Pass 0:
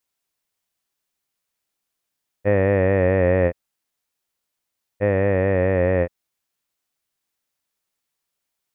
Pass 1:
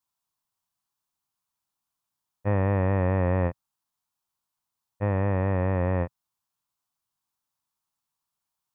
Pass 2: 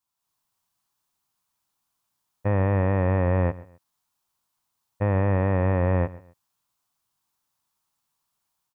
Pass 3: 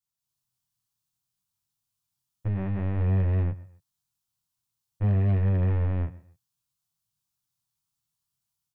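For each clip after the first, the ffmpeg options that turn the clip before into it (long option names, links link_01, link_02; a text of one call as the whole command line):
ffmpeg -i in.wav -af "equalizer=frequency=125:width_type=o:width=1:gain=6,equalizer=frequency=500:width_type=o:width=1:gain=-9,equalizer=frequency=1000:width_type=o:width=1:gain=11,equalizer=frequency=2000:width_type=o:width=1:gain=-8,volume=-5dB" out.wav
ffmpeg -i in.wav -af "alimiter=limit=-20dB:level=0:latency=1:release=25,dynaudnorm=framelen=160:gausssize=3:maxgain=6.5dB,aecho=1:1:131|262:0.112|0.0325" out.wav
ffmpeg -i in.wav -af "flanger=delay=19.5:depth=6.7:speed=0.57,equalizer=frequency=125:width_type=o:width=1:gain=9,equalizer=frequency=250:width_type=o:width=1:gain=-4,equalizer=frequency=500:width_type=o:width=1:gain=-10,equalizer=frequency=1000:width_type=o:width=1:gain=-8,equalizer=frequency=2000:width_type=o:width=1:gain=-5,aeval=exprs='0.224*(cos(1*acos(clip(val(0)/0.224,-1,1)))-cos(1*PI/2))+0.02*(cos(3*acos(clip(val(0)/0.224,-1,1)))-cos(3*PI/2))+0.0316*(cos(4*acos(clip(val(0)/0.224,-1,1)))-cos(4*PI/2))+0.0251*(cos(5*acos(clip(val(0)/0.224,-1,1)))-cos(5*PI/2))+0.0398*(cos(6*acos(clip(val(0)/0.224,-1,1)))-cos(6*PI/2))':channel_layout=same,volume=-3dB" out.wav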